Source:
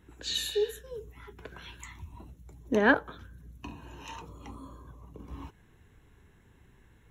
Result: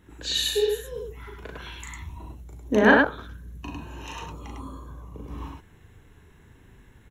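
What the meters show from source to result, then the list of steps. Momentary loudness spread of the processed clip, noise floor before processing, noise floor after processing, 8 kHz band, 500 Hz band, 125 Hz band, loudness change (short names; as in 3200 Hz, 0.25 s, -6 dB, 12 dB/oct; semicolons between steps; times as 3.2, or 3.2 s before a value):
23 LU, -61 dBFS, -54 dBFS, +6.5 dB, +6.5 dB, +7.5 dB, +6.5 dB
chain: loudspeakers at several distances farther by 13 m -3 dB, 35 m -2 dB; gain +3.5 dB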